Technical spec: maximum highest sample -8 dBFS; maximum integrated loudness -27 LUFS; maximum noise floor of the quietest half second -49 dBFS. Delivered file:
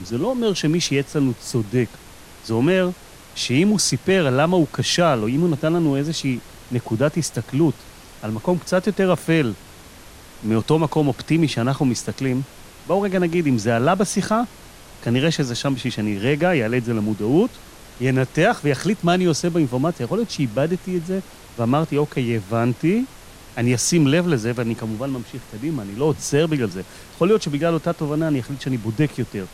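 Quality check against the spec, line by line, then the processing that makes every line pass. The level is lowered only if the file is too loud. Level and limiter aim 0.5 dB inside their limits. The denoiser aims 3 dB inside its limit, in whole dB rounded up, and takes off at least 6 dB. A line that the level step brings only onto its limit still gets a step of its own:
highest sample -5.0 dBFS: fail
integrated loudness -21.0 LUFS: fail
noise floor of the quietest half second -43 dBFS: fail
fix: gain -6.5 dB

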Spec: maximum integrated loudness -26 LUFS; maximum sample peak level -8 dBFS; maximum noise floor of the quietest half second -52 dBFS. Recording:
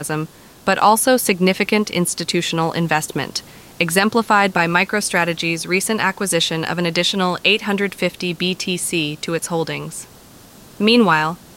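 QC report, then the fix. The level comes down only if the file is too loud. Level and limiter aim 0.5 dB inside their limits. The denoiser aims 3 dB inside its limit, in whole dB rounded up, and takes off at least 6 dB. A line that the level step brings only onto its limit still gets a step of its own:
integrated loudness -17.5 LUFS: fail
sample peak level -2.5 dBFS: fail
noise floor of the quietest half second -44 dBFS: fail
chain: gain -9 dB

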